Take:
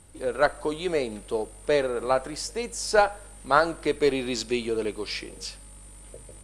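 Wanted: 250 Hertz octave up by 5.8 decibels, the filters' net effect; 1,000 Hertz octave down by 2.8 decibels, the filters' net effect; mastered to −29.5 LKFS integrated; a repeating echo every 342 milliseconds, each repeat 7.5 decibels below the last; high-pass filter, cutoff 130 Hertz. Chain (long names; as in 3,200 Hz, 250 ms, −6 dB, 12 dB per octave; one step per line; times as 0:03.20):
high-pass filter 130 Hz
parametric band 250 Hz +8 dB
parametric band 1,000 Hz −4.5 dB
repeating echo 342 ms, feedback 42%, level −7.5 dB
level −4.5 dB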